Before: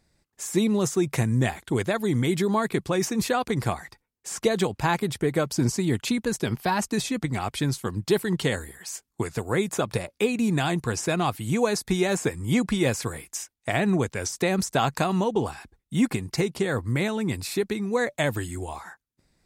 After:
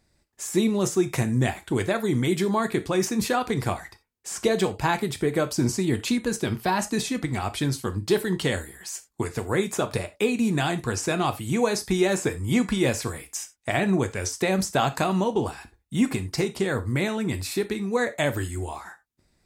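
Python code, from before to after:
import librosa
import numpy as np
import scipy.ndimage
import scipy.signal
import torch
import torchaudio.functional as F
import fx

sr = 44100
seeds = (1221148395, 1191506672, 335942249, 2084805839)

y = fx.rev_gated(x, sr, seeds[0], gate_ms=110, shape='falling', drr_db=8.5)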